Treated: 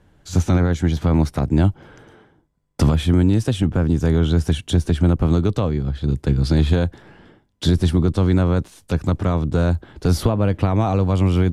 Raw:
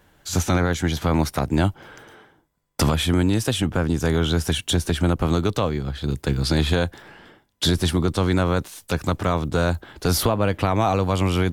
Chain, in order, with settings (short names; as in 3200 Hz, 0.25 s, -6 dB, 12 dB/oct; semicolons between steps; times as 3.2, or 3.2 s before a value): Bessel low-pass 10000 Hz, order 8; low shelf 460 Hz +11.5 dB; gain -5.5 dB